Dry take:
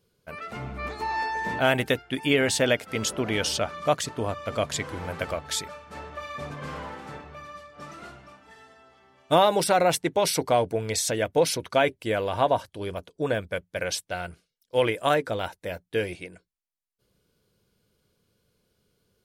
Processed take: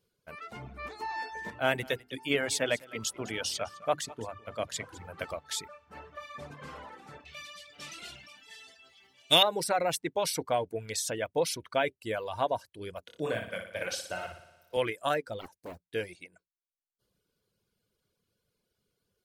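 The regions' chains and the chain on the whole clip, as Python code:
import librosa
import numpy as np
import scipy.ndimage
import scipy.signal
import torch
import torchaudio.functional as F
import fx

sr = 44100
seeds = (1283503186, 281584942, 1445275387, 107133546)

y = fx.chain(x, sr, fx.hum_notches(base_hz=50, count=8),
    fx.echo_single(ms=208, db=-11.0),
    fx.band_widen(depth_pct=40), at=(1.5, 5.18))
y = fx.chain(y, sr, fx.high_shelf_res(hz=1900.0, db=13.5, q=1.5),
    fx.sustainer(db_per_s=35.0), at=(7.25, 9.43))
y = fx.chain(y, sr, fx.doubler(ms=27.0, db=-5.5),
    fx.room_flutter(wall_m=10.1, rt60_s=1.0),
    fx.band_squash(depth_pct=40), at=(13.07, 14.77))
y = fx.chain(y, sr, fx.peak_eq(hz=1800.0, db=-9.0, octaves=2.2),
    fx.doppler_dist(depth_ms=0.94), at=(15.41, 15.9))
y = fx.dereverb_blind(y, sr, rt60_s=0.99)
y = fx.low_shelf(y, sr, hz=410.0, db=-3.0)
y = F.gain(torch.from_numpy(y), -5.5).numpy()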